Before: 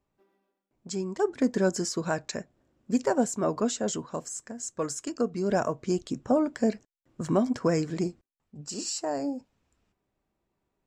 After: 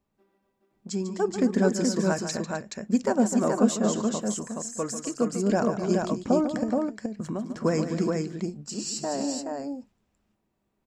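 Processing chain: peaking EQ 210 Hz +9 dB 0.21 oct; 6.63–7.57 s: compression 5:1, threshold -30 dBFS, peak gain reduction 12.5 dB; on a send: multi-tap echo 146/257/424 ms -10.5/-13.5/-3.5 dB

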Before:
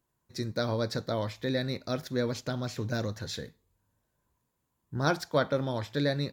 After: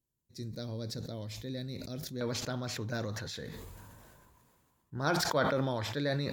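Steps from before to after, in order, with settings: peaking EQ 1.2 kHz -14 dB 2.4 oct, from 2.21 s +3 dB; decay stretcher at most 24 dB/s; trim -6 dB

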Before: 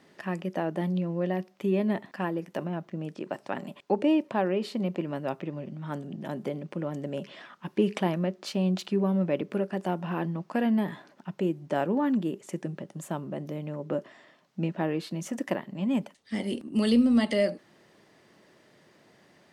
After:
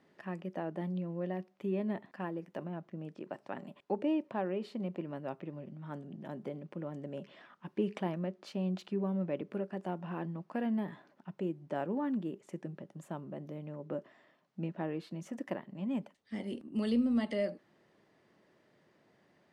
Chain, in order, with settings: treble shelf 3.7 kHz -9.5 dB; trim -8 dB

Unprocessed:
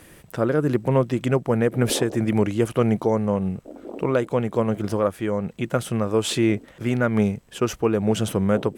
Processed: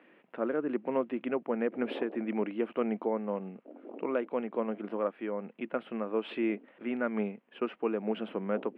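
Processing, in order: elliptic band-pass 230–2700 Hz, stop band 40 dB; trim -9 dB

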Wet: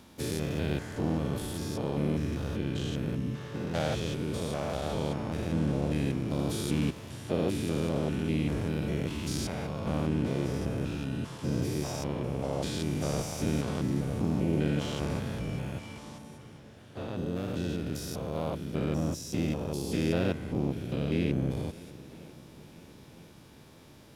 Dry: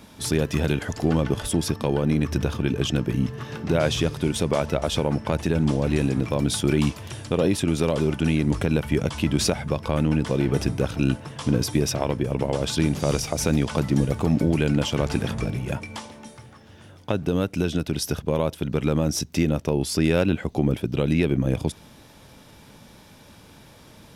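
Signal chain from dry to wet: spectrogram pixelated in time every 200 ms; shuffle delay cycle 1000 ms, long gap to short 1.5:1, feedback 51%, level -20.5 dB; harmony voices +4 st -7 dB; trim -6.5 dB

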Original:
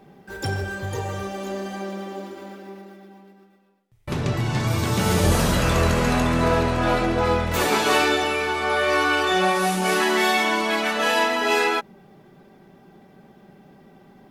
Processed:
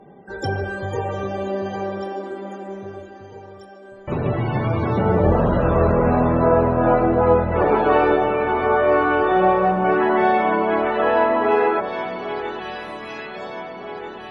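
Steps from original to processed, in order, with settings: loudest bins only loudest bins 64; peaking EQ 560 Hz +6.5 dB 1.9 oct; echo whose repeats swap between lows and highs 793 ms, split 1.4 kHz, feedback 72%, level -11 dB; low-pass that closes with the level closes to 1.5 kHz, closed at -15 dBFS

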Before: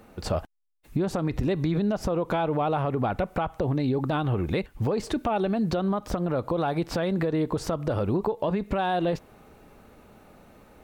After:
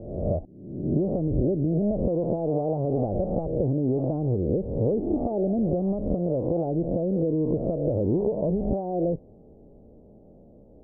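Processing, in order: reverse spectral sustain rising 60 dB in 0.92 s; steep low-pass 630 Hz 36 dB/octave

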